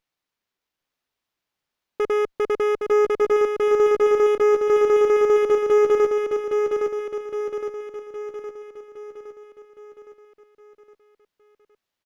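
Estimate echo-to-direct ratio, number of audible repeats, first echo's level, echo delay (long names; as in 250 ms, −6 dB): −3.0 dB, 6, −4.5 dB, 814 ms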